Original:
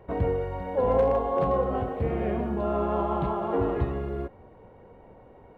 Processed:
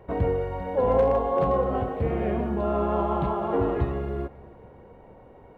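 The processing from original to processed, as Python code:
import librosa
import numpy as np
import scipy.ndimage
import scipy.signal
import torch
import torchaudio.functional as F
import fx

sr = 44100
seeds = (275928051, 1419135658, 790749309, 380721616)

y = fx.echo_feedback(x, sr, ms=275, feedback_pct=49, wet_db=-22.0)
y = y * librosa.db_to_amplitude(1.5)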